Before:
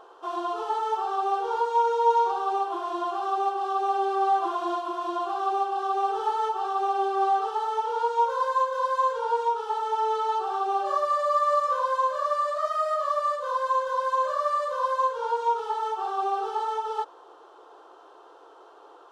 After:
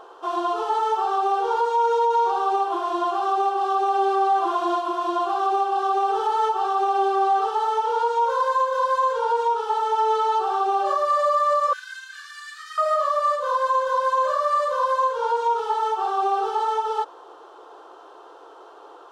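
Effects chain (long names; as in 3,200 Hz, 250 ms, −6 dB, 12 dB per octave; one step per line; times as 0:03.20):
brickwall limiter −19 dBFS, peak gain reduction 7.5 dB
0:11.73–0:12.78: Butterworth high-pass 1,400 Hz 96 dB per octave
level +5.5 dB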